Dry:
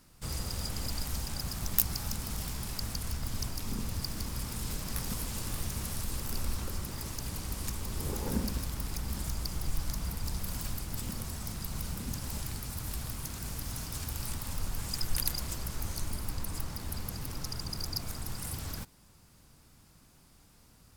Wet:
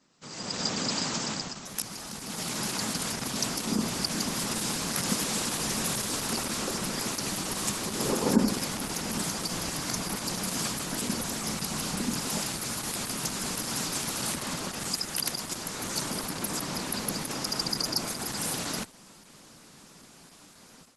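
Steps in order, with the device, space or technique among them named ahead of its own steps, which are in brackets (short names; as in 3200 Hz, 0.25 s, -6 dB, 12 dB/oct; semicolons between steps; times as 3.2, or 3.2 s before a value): 14.38–14.8 high shelf 7800 Hz -5.5 dB; noise-suppressed video call (HPF 180 Hz 24 dB/oct; spectral gate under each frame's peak -30 dB strong; AGC gain up to 15 dB; gain -2.5 dB; Opus 12 kbps 48000 Hz)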